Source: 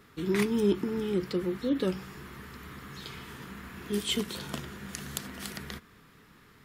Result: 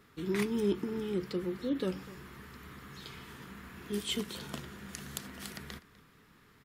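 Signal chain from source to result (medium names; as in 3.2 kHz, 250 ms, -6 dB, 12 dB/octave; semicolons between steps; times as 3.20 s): delay 249 ms -20.5 dB; trim -4.5 dB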